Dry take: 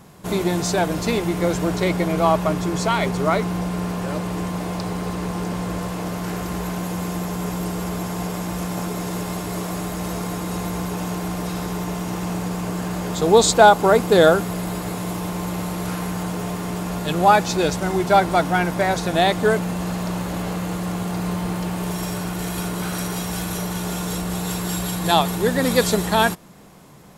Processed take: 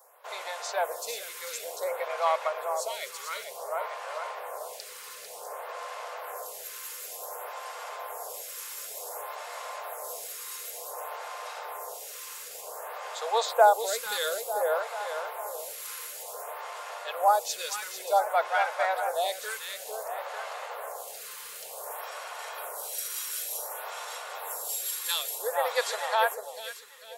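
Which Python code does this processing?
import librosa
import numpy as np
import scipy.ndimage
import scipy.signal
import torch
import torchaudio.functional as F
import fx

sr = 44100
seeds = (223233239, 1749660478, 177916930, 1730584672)

y = scipy.signal.sosfilt(scipy.signal.ellip(4, 1.0, 40, 500.0, 'highpass', fs=sr, output='sos'), x)
y = fx.high_shelf(y, sr, hz=8700.0, db=10.5)
y = fx.echo_tape(y, sr, ms=446, feedback_pct=53, wet_db=-6.0, lp_hz=4200.0, drive_db=-2.0, wow_cents=6)
y = fx.stagger_phaser(y, sr, hz=0.55)
y = y * librosa.db_to_amplitude(-5.5)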